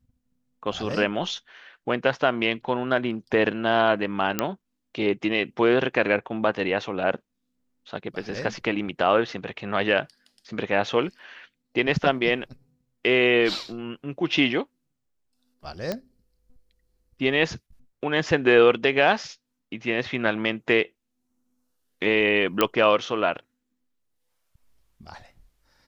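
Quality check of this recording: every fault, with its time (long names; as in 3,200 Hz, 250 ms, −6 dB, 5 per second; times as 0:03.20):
0:04.39: click −6 dBFS
0:15.92: click −14 dBFS
0:22.61: click −5 dBFS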